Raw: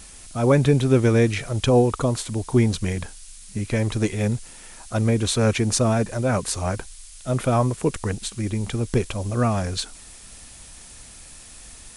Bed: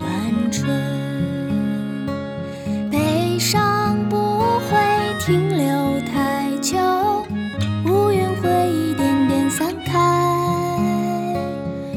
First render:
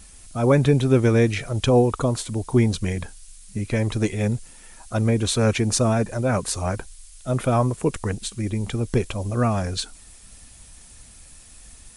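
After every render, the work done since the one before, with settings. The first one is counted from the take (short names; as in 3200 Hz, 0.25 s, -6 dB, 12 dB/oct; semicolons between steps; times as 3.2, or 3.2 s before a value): denoiser 6 dB, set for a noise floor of -44 dBFS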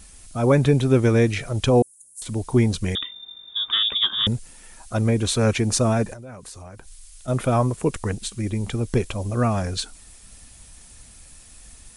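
1.82–2.22 inverse Chebyshev high-pass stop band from 2900 Hz, stop band 60 dB; 2.95–4.27 inverted band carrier 3600 Hz; 6.13–7.28 compressor, threshold -37 dBFS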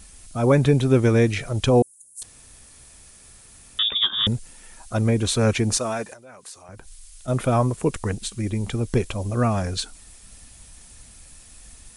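2.23–3.79 room tone; 5.77–6.69 HPF 730 Hz 6 dB/oct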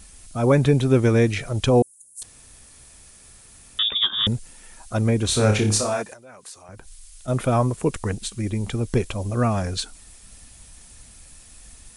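5.26–6.02 flutter echo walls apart 4.9 m, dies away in 0.35 s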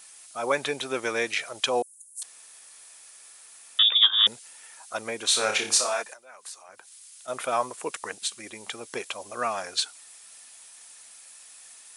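HPF 760 Hz 12 dB/oct; dynamic EQ 3400 Hz, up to +3 dB, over -35 dBFS, Q 0.81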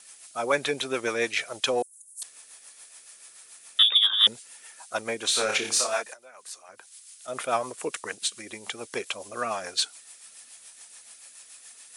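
in parallel at -8 dB: soft clip -17 dBFS, distortion -12 dB; on the sum: rotary speaker horn 7 Hz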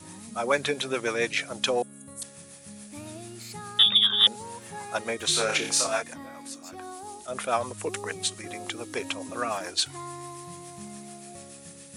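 add bed -23.5 dB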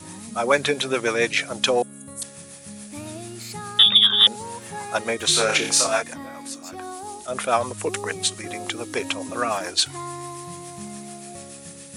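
gain +5.5 dB; limiter -3 dBFS, peak gain reduction 2 dB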